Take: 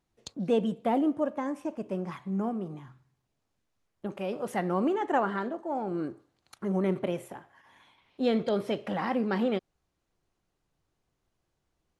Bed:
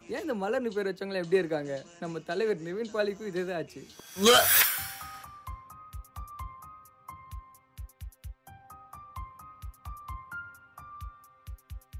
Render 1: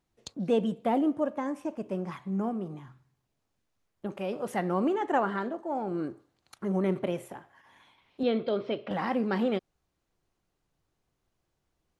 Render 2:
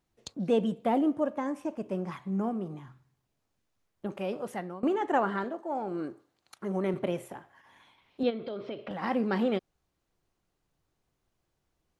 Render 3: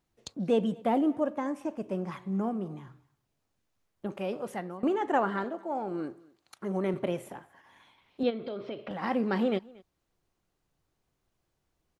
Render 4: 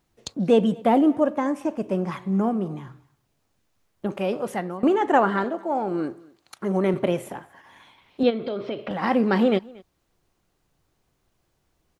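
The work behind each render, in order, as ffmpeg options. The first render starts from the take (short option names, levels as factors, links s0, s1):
-filter_complex "[0:a]asettb=1/sr,asplit=3[s0][s1][s2];[s0]atrim=end=8.234[s3];[s1]atrim=start=8.23:end=8.91,asetpts=PTS-STARTPTS,afade=t=in:d=0.004:c=qsin,afade=t=out:st=0.676:d=0.004:c=qsin,highpass=110,equalizer=f=180:t=q:w=4:g=-8,equalizer=f=840:t=q:w=4:g=-6,equalizer=f=1800:t=q:w=4:g=-6,lowpass=f=4100:w=0.5412,lowpass=f=4100:w=1.3066[s4];[s2]atrim=start=8.906[s5];[s3][s4]acrossfade=d=0.004:c1=hsin:c2=qsin[s6];[s6][s5]acrossfade=d=0.004:c1=qsin:c2=hsin"
-filter_complex "[0:a]asettb=1/sr,asplit=3[s0][s1][s2];[s0]atrim=end=5.444[s3];[s1]atrim=start=5.44:end=6.94,asetpts=PTS-STARTPTS,afade=t=in:d=0.004:c=qsin,afade=t=out:st=1.496:d=0.004:c=qsin,lowshelf=f=170:g=-9.5[s4];[s2]atrim=start=6.936[s5];[s3][s4]acrossfade=d=0.004:c1=hsin:c2=qsin[s6];[s6][s5]acrossfade=d=0.004:c1=qsin:c2=hsin,asplit=3[s7][s8][s9];[s7]afade=t=out:st=8.29:d=0.02[s10];[s8]acompressor=threshold=0.0224:ratio=6:attack=3.2:release=140:knee=1:detection=peak,afade=t=in:st=8.29:d=0.02,afade=t=out:st=9.02:d=0.02[s11];[s9]afade=t=in:st=9.02:d=0.02[s12];[s10][s11][s12]amix=inputs=3:normalize=0,asplit=2[s13][s14];[s13]atrim=end=4.83,asetpts=PTS-STARTPTS,afade=t=out:st=4.29:d=0.54:silence=0.0891251[s15];[s14]atrim=start=4.83,asetpts=PTS-STARTPTS,afade=t=in:d=0.004:c=hsin:silence=0.0891251[s16];[s15][s16]concat=n=2:v=0:a=1"
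-af "aecho=1:1:231:0.0631"
-af "volume=2.51"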